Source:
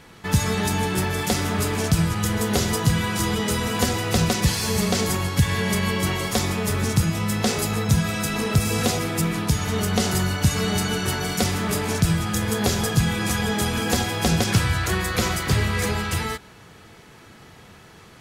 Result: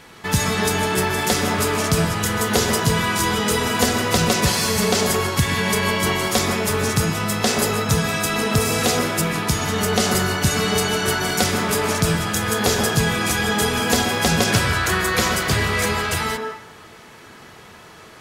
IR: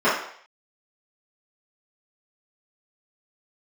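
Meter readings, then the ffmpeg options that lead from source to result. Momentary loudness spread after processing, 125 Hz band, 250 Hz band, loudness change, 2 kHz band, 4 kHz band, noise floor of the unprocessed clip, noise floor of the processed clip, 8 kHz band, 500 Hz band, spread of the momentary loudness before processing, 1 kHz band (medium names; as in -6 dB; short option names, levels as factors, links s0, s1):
3 LU, -1.0 dB, +1.0 dB, +3.0 dB, +6.0 dB, +4.5 dB, -47 dBFS, -44 dBFS, +4.5 dB, +5.0 dB, 3 LU, +5.5 dB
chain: -filter_complex "[0:a]lowshelf=f=270:g=-7,asplit=2[s0][s1];[1:a]atrim=start_sample=2205,adelay=122[s2];[s1][s2]afir=irnorm=-1:irlink=0,volume=0.0562[s3];[s0][s3]amix=inputs=2:normalize=0,volume=1.68"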